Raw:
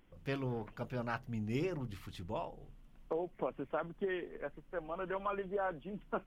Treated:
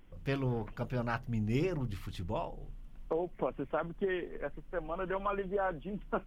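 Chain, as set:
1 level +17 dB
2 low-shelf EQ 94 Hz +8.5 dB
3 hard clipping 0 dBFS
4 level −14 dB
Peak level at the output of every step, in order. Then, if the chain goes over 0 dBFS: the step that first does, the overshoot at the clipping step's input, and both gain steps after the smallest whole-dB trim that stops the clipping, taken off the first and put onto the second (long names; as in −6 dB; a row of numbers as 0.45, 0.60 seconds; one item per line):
−6.5, −5.0, −5.0, −19.0 dBFS
no step passes full scale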